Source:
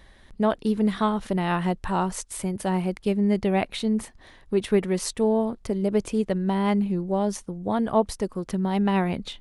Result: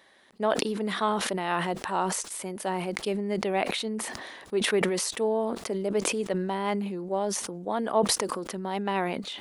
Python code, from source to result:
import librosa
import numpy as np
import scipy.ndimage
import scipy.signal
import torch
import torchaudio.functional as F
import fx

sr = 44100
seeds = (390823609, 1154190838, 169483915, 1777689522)

y = scipy.signal.sosfilt(scipy.signal.butter(2, 340.0, 'highpass', fs=sr, output='sos'), x)
y = fx.sustainer(y, sr, db_per_s=34.0)
y = y * 10.0 ** (-2.0 / 20.0)